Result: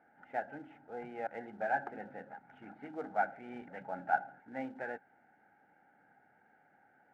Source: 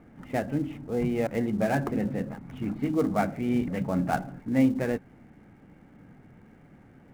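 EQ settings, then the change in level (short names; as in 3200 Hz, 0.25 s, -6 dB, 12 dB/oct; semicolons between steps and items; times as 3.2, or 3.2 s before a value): double band-pass 1100 Hz, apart 0.85 oct; bell 1100 Hz -2.5 dB; +2.0 dB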